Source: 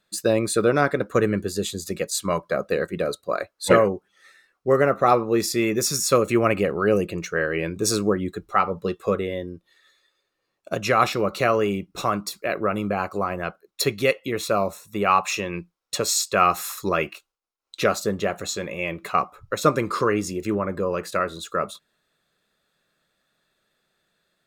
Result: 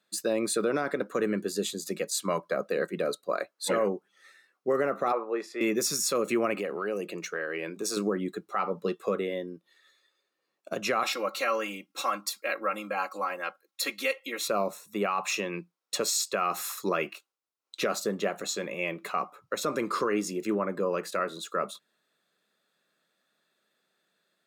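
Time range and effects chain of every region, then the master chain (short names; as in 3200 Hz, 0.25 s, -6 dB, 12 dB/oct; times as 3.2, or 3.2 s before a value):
5.12–5.61 LPF 9300 Hz + three-band isolator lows -21 dB, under 420 Hz, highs -19 dB, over 2300 Hz
6.55–7.97 HPF 310 Hz 6 dB/oct + compressor 3:1, threshold -25 dBFS
11.03–14.48 HPF 1100 Hz 6 dB/oct + comb 3.7 ms, depth 97%
whole clip: HPF 180 Hz 24 dB/oct; limiter -14 dBFS; gain -3.5 dB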